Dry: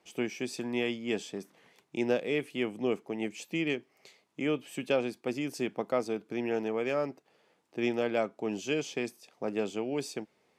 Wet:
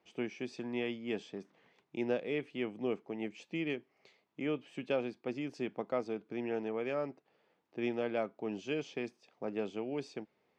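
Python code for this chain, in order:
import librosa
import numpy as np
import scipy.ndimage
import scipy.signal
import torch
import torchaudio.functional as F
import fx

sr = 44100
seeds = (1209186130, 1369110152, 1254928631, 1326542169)

y = fx.air_absorb(x, sr, metres=150.0)
y = y * librosa.db_to_amplitude(-4.5)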